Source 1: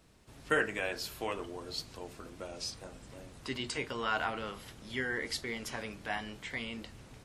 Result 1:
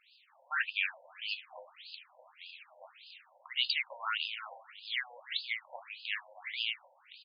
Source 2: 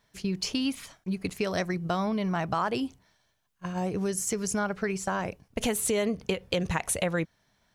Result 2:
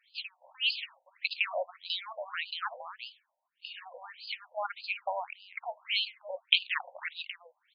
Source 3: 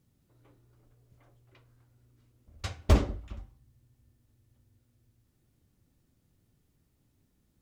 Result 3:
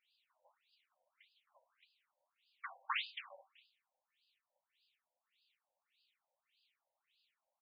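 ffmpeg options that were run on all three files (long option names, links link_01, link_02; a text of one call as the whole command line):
ffmpeg -i in.wav -af "aexciter=amount=5.4:drive=1.5:freq=2300,aecho=1:1:276:0.188,afftfilt=real='re*between(b*sr/1024,680*pow(3600/680,0.5+0.5*sin(2*PI*1.7*pts/sr))/1.41,680*pow(3600/680,0.5+0.5*sin(2*PI*1.7*pts/sr))*1.41)':imag='im*between(b*sr/1024,680*pow(3600/680,0.5+0.5*sin(2*PI*1.7*pts/sr))/1.41,680*pow(3600/680,0.5+0.5*sin(2*PI*1.7*pts/sr))*1.41)':win_size=1024:overlap=0.75" out.wav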